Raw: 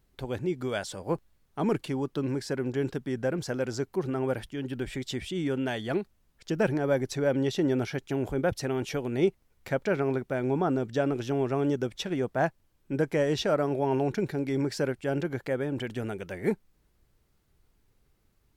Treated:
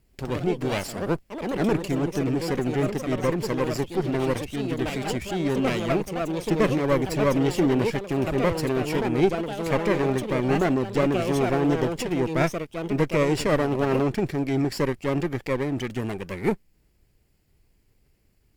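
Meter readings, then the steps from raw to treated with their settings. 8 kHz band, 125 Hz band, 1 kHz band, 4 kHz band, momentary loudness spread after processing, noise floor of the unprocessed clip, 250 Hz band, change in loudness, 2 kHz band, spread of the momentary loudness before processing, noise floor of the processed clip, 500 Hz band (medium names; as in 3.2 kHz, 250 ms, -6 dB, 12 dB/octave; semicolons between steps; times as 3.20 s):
+5.5 dB, +5.5 dB, +6.0 dB, +4.0 dB, 6 LU, -69 dBFS, +5.5 dB, +5.0 dB, +5.0 dB, 7 LU, -64 dBFS, +4.0 dB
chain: comb filter that takes the minimum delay 0.41 ms; ever faster or slower copies 94 ms, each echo +3 st, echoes 2, each echo -6 dB; trim +4.5 dB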